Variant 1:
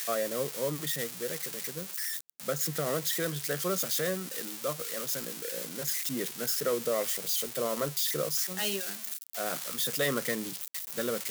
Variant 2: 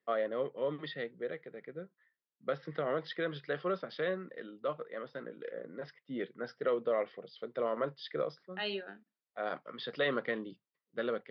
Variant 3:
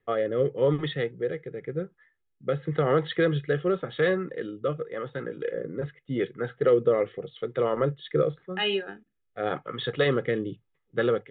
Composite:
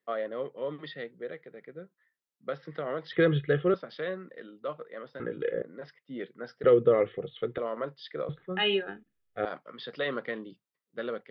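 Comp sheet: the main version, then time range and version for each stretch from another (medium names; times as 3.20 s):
2
3.13–3.74 s: from 3
5.20–5.62 s: from 3
6.64–7.58 s: from 3
8.29–9.45 s: from 3
not used: 1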